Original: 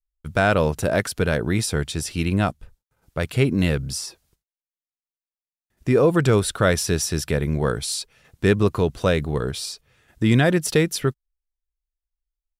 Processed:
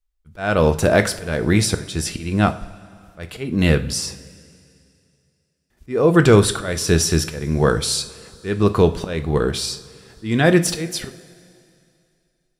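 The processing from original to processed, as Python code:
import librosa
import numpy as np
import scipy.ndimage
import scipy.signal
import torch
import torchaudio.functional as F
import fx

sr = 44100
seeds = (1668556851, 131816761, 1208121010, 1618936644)

y = fx.high_shelf(x, sr, hz=11000.0, db=-7.0)
y = fx.auto_swell(y, sr, attack_ms=332.0)
y = fx.rev_double_slope(y, sr, seeds[0], early_s=0.36, late_s=2.6, knee_db=-18, drr_db=8.0)
y = F.gain(torch.from_numpy(y), 6.0).numpy()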